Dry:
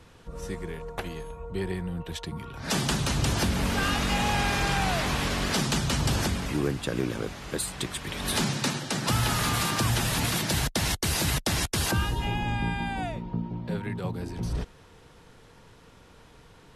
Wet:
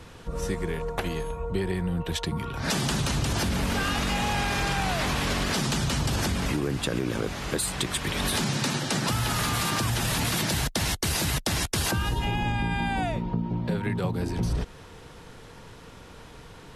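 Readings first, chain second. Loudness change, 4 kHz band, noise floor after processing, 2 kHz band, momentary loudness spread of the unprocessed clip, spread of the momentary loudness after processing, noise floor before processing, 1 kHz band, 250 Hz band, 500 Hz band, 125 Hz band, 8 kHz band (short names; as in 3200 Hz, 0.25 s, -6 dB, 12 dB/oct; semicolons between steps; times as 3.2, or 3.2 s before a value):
+1.0 dB, +0.5 dB, -47 dBFS, +0.5 dB, 11 LU, 19 LU, -54 dBFS, +0.5 dB, +1.0 dB, +1.5 dB, +1.0 dB, +0.5 dB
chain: limiter -20 dBFS, peak gain reduction 4.5 dB; compressor, threshold -30 dBFS, peak gain reduction 6 dB; gain +7 dB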